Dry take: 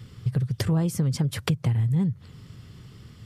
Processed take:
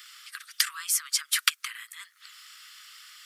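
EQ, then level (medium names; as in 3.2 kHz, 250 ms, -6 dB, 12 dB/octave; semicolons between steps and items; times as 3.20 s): steep high-pass 1.2 kHz 72 dB/octave; treble shelf 6.7 kHz +6.5 dB; +8.5 dB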